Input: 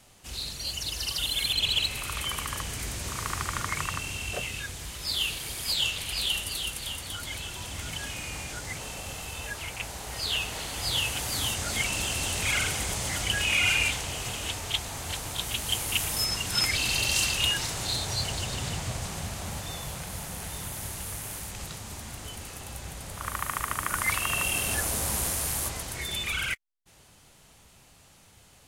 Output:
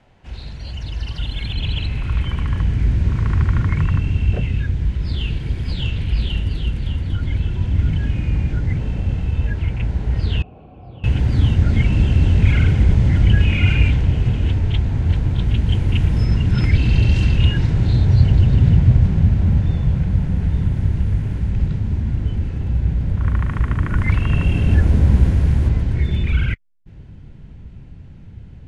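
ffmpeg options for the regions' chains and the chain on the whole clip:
-filter_complex "[0:a]asettb=1/sr,asplit=3[s0][s1][s2];[s0]atrim=end=10.424[s3];[s1]atrim=start=10.42:end=11.04,asetpts=PTS-STARTPTS,afade=t=in:d=0.004:c=qsin,afade=t=out:st=0.616:d=0.004:c=qsin,asplit=3[s4][s5][s6];[s4]bandpass=f=730:t=q:w=8,volume=1[s7];[s5]bandpass=f=1090:t=q:w=8,volume=0.501[s8];[s6]bandpass=f=2440:t=q:w=8,volume=0.355[s9];[s7][s8][s9]amix=inputs=3:normalize=0,tiltshelf=f=790:g=9.5,bandreject=f=670:w=16[s10];[s2]atrim=start=11.036[s11];[s3][s10]acrossfade=d=0.004:c1=hsin:c2=qsin[s12];[s12][s11]acrossfade=d=0.004:c1=qsin:c2=hsin,lowpass=1900,bandreject=f=1200:w=6.8,asubboost=boost=10:cutoff=230,volume=1.78"

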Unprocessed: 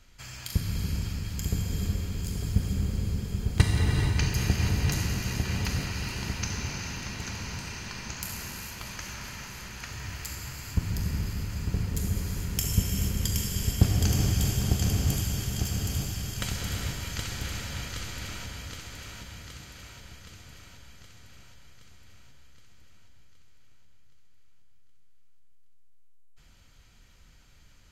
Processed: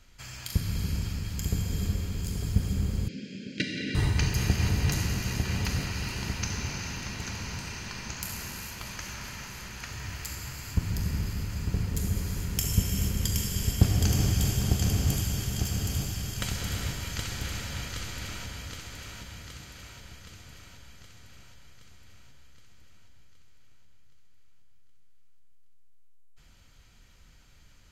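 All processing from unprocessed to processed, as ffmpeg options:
-filter_complex "[0:a]asettb=1/sr,asplit=3[s0][s1][s2];[s0]atrim=end=3.084[s3];[s1]atrim=start=3.08:end=3.95,asetpts=PTS-STARTPTS,afade=t=in:d=0.004:c=qsin,afade=t=out:st=0.866:d=0.004:c=qsin,asuperstop=centerf=940:order=20:qfactor=1.1,highpass=f=200:w=0.5412,highpass=f=200:w=1.3066,equalizer=f=270:t=q:w=4:g=6,equalizer=f=430:t=q:w=4:g=-6,equalizer=f=1700:t=q:w=4:g=-3,equalizer=f=2500:t=q:w=4:g=5,lowpass=f=5500:w=0.5412,lowpass=f=5500:w=1.3066[s4];[s2]atrim=start=3.946[s5];[s3][s4]acrossfade=d=0.004:c1=hsin:c2=qsin[s6];[s6][s5]acrossfade=d=0.004:c1=qsin:c2=hsin"

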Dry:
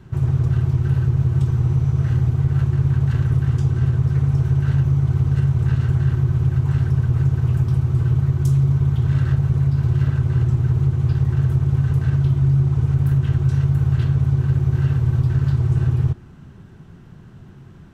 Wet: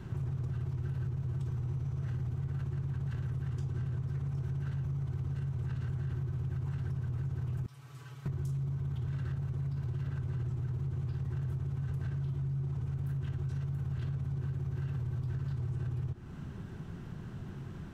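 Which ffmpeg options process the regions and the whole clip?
-filter_complex "[0:a]asettb=1/sr,asplit=3[s0][s1][s2];[s0]atrim=end=7.664[s3];[s1]atrim=start=7.66:end=8.26,asetpts=PTS-STARTPTS,afade=t=in:d=0.004:c=qsin,afade=t=out:st=0.596:d=0.004:c=qsin,lowpass=f=2200:p=1,aderivative,aecho=1:1:7:0.86,atrim=end_sample=26460[s4];[s2]atrim=start=8.256[s5];[s3][s4]acrossfade=d=0.004:c1=hsin:c2=qsin[s6];[s6][s5]acrossfade=d=0.004:c1=qsin:c2=hsin,alimiter=limit=0.1:level=0:latency=1:release=50,acompressor=threshold=0.0141:ratio=2.5"

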